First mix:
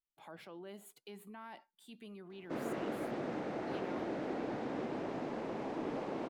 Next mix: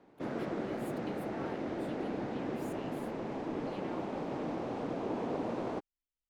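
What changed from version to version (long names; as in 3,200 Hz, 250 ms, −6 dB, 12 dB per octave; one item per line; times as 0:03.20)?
background: entry −2.30 s
master: add low-shelf EQ 190 Hz +7.5 dB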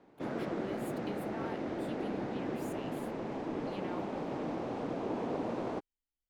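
speech +3.0 dB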